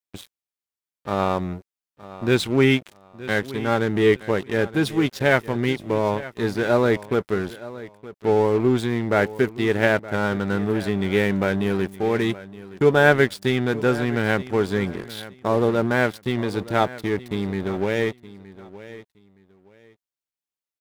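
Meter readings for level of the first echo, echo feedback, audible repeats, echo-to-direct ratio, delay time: -17.0 dB, 23%, 2, -17.0 dB, 919 ms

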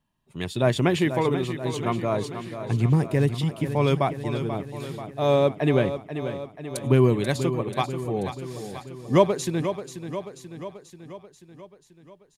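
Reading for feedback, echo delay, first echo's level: 60%, 486 ms, -10.0 dB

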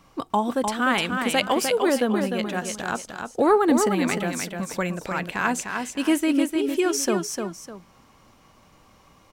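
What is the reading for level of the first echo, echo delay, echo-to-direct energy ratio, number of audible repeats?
-5.5 dB, 302 ms, -5.0 dB, 2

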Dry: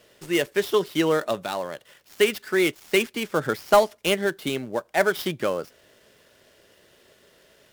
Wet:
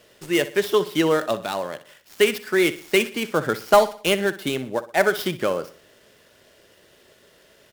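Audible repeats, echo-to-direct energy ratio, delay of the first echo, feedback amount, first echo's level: 3, -14.0 dB, 61 ms, 41%, -15.0 dB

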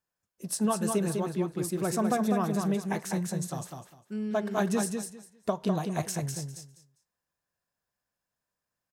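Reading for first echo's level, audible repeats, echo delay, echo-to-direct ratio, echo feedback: -5.0 dB, 3, 201 ms, -5.0 dB, 20%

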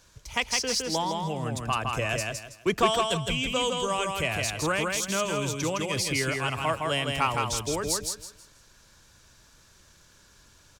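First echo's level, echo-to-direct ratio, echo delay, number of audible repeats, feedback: -3.5 dB, -3.0 dB, 162 ms, 3, 28%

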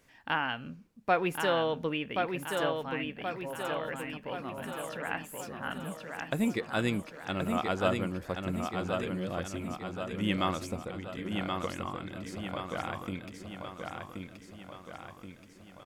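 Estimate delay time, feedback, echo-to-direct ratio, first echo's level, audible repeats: 1077 ms, 54%, -3.0 dB, -4.5 dB, 6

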